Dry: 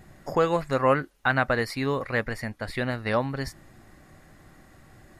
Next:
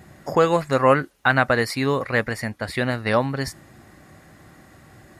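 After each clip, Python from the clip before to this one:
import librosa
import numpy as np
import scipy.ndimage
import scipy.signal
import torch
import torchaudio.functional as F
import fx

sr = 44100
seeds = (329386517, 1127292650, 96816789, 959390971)

y = scipy.signal.sosfilt(scipy.signal.butter(2, 68.0, 'highpass', fs=sr, output='sos'), x)
y = fx.dynamic_eq(y, sr, hz=8600.0, q=0.8, threshold_db=-48.0, ratio=4.0, max_db=4)
y = y * 10.0 ** (5.0 / 20.0)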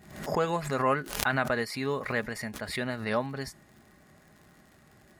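y = x + 0.34 * np.pad(x, (int(4.8 * sr / 1000.0), 0))[:len(x)]
y = fx.dmg_crackle(y, sr, seeds[0], per_s=76.0, level_db=-37.0)
y = fx.pre_swell(y, sr, db_per_s=85.0)
y = y * 10.0 ** (-10.0 / 20.0)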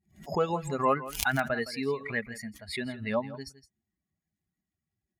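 y = fx.bin_expand(x, sr, power=2.0)
y = y + 10.0 ** (-15.5 / 20.0) * np.pad(y, (int(165 * sr / 1000.0), 0))[:len(y)]
y = y * 10.0 ** (3.0 / 20.0)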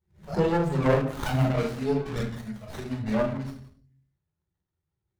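y = fx.env_flanger(x, sr, rest_ms=2.2, full_db=-23.5)
y = fx.room_shoebox(y, sr, seeds[1], volume_m3=500.0, walls='furnished', distance_m=4.4)
y = fx.running_max(y, sr, window=17)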